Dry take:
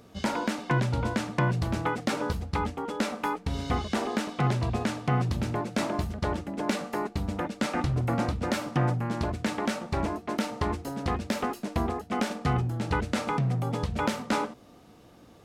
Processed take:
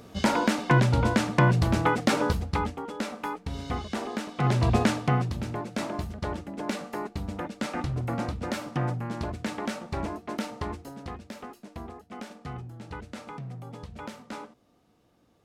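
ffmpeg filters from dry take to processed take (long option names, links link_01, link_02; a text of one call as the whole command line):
ffmpeg -i in.wav -af "volume=15.5dB,afade=type=out:start_time=2.19:duration=0.69:silence=0.375837,afade=type=in:start_time=4.34:duration=0.41:silence=0.298538,afade=type=out:start_time=4.75:duration=0.55:silence=0.316228,afade=type=out:start_time=10.42:duration=0.82:silence=0.354813" out.wav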